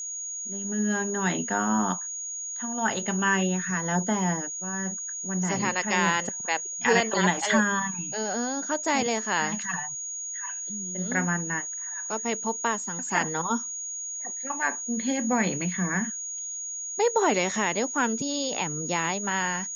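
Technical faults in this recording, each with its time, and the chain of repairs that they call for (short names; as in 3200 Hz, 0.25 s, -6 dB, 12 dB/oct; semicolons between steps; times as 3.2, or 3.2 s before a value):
tone 6700 Hz -32 dBFS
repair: notch 6700 Hz, Q 30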